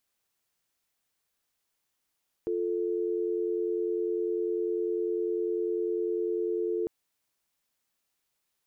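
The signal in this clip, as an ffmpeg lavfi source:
-f lavfi -i "aevalsrc='0.0335*(sin(2*PI*350*t)+sin(2*PI*440*t))':d=4.4:s=44100"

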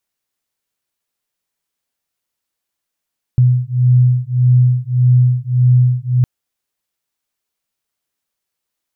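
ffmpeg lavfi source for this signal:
-f lavfi -i "aevalsrc='0.251*(sin(2*PI*124*t)+sin(2*PI*125.7*t))':d=2.86:s=44100"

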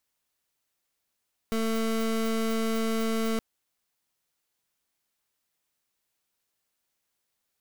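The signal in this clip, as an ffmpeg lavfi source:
-f lavfi -i "aevalsrc='0.0447*(2*lt(mod(224*t,1),0.26)-1)':d=1.87:s=44100"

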